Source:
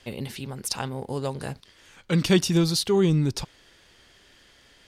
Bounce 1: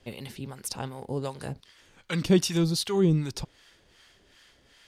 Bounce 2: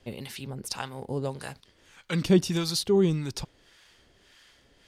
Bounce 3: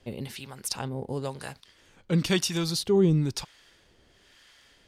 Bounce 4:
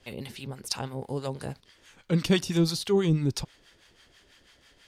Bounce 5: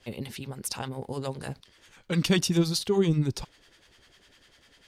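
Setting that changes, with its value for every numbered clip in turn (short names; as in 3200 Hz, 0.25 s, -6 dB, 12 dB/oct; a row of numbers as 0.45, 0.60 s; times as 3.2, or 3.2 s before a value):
harmonic tremolo, rate: 2.6, 1.7, 1, 6.1, 10 Hz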